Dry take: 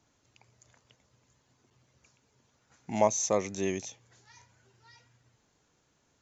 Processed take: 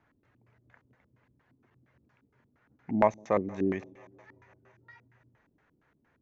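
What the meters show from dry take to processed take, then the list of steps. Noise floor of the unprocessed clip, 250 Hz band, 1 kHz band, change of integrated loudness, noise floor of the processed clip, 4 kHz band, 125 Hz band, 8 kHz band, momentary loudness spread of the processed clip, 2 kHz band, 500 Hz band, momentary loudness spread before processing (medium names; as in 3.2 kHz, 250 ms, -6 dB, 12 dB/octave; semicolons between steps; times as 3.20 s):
-72 dBFS, +4.0 dB, +1.5 dB, +0.5 dB, -72 dBFS, under -10 dB, +2.0 dB, no reading, 8 LU, +1.5 dB, 0.0 dB, 12 LU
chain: thinning echo 167 ms, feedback 77%, high-pass 260 Hz, level -22 dB; LFO low-pass square 4.3 Hz 290–1800 Hz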